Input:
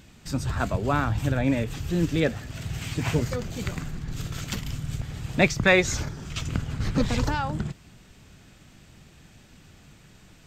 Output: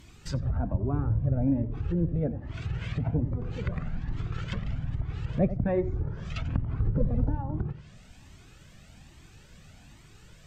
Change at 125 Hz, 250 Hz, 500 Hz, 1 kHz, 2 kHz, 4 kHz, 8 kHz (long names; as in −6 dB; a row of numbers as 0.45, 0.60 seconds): −0.5 dB, −3.0 dB, −6.0 dB, −11.0 dB, −18.0 dB, −14.5 dB, below −15 dB